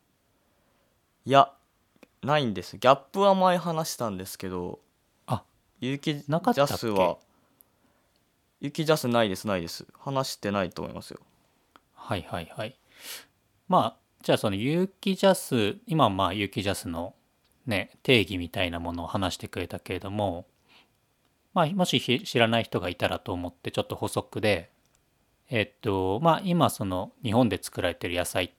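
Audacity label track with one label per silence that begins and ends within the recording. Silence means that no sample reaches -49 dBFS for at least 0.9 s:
7.610000	8.620000	silence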